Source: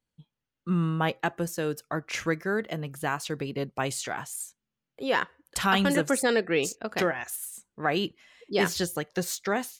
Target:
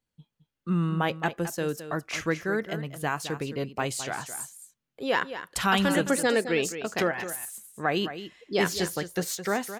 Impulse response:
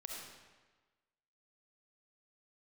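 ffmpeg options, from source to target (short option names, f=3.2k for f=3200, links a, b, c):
-af "aecho=1:1:215:0.266"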